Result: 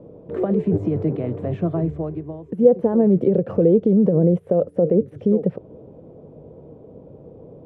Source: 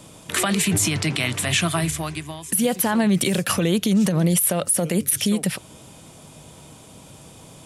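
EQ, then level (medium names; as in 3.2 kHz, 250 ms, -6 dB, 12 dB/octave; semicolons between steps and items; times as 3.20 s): resonant low-pass 470 Hz, resonance Q 4; 0.0 dB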